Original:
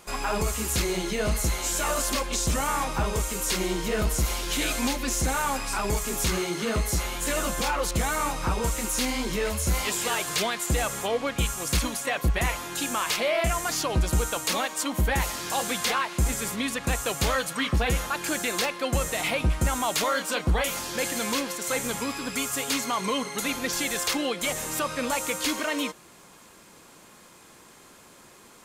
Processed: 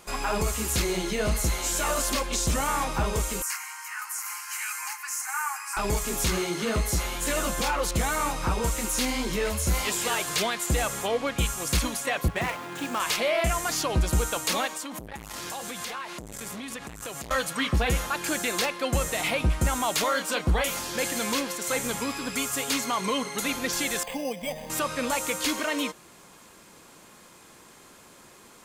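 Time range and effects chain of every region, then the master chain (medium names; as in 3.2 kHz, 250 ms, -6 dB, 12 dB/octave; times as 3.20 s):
3.42–5.77 s: brick-wall FIR high-pass 730 Hz + static phaser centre 1.5 kHz, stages 4
12.28–13.00 s: median filter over 9 samples + high-pass 100 Hz 24 dB/octave
14.75–17.31 s: compression 16:1, threshold -30 dBFS + transformer saturation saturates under 990 Hz
24.03–24.70 s: static phaser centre 360 Hz, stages 6 + careless resampling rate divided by 8×, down filtered, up hold
whole clip: none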